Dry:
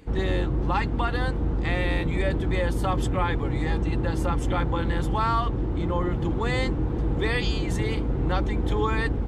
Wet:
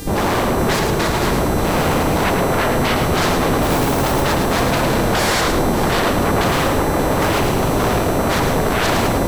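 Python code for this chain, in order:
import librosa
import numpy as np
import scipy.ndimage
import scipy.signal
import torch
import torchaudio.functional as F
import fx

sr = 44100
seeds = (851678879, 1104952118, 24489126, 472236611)

y = scipy.signal.medfilt(x, 25)
y = fx.lowpass(y, sr, hz=1800.0, slope=12, at=(2.24, 2.98))
y = fx.mod_noise(y, sr, seeds[0], snr_db=24, at=(3.62, 4.21))
y = fx.fold_sine(y, sr, drive_db=17, ceiling_db=-13.5)
y = fx.dmg_buzz(y, sr, base_hz=400.0, harmonics=38, level_db=-35.0, tilt_db=0, odd_only=False)
y = fx.notch_comb(y, sr, f0_hz=260.0, at=(0.76, 1.21))
y = y + 10.0 ** (-12.0 / 20.0) * np.pad(y, (int(585 * sr / 1000.0), 0))[:len(y)]
y = fx.echo_crushed(y, sr, ms=108, feedback_pct=35, bits=7, wet_db=-5.0)
y = F.gain(torch.from_numpy(y), -1.5).numpy()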